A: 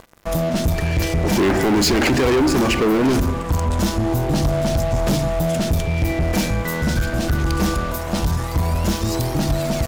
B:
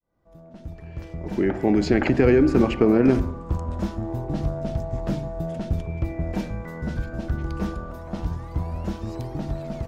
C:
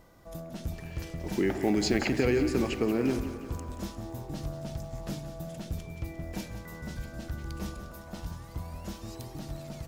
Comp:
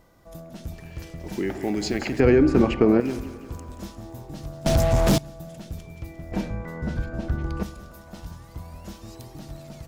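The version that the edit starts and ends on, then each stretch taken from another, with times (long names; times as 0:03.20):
C
0:02.20–0:03.00: punch in from B
0:04.66–0:05.18: punch in from A
0:06.32–0:07.63: punch in from B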